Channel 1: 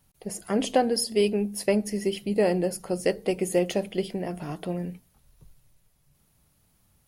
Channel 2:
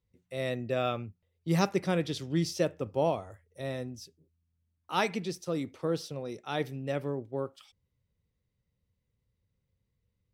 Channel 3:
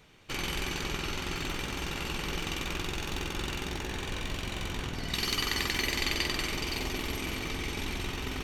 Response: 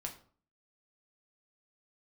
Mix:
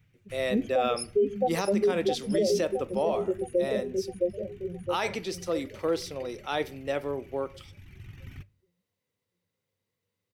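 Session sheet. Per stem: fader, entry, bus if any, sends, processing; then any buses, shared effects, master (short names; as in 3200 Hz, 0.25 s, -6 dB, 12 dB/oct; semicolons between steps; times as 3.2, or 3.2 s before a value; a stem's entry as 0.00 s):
+1.5 dB, 0.00 s, send -9.5 dB, echo send -3 dB, reverb removal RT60 1.5 s; high shelf 4400 Hz +7.5 dB; spectral expander 2.5:1
+2.5 dB, 0.00 s, send -8.5 dB, no echo send, HPF 340 Hz 12 dB/oct
-10.0 dB, 0.00 s, send -14 dB, no echo send, reverb removal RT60 0.66 s; graphic EQ 125/250/500/1000/2000/4000/8000 Hz +12/-3/-11/-10/+4/-10/-8 dB; auto duck -12 dB, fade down 0.80 s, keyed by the second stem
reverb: on, RT60 0.45 s, pre-delay 6 ms
echo: feedback echo 0.664 s, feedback 47%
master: bell 99 Hz +10 dB 0.32 oct; limiter -17 dBFS, peak gain reduction 11 dB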